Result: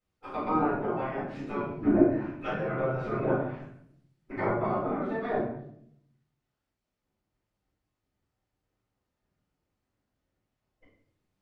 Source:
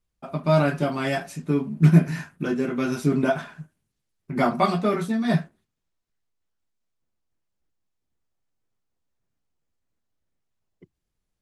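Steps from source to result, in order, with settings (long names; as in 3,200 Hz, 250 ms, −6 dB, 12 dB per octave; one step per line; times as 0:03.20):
gate on every frequency bin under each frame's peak −10 dB weak
treble cut that deepens with the level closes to 780 Hz, closed at −29.5 dBFS
high-shelf EQ 6,200 Hz −11 dB
rectangular room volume 130 cubic metres, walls mixed, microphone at 4.1 metres
level −8.5 dB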